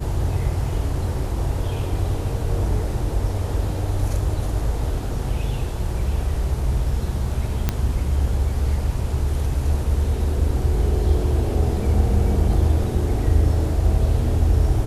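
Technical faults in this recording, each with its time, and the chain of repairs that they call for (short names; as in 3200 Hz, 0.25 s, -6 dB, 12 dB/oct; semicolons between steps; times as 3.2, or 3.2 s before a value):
7.69 pop -6 dBFS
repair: de-click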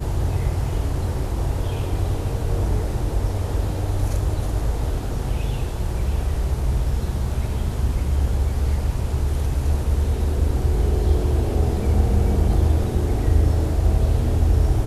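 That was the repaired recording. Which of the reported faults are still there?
none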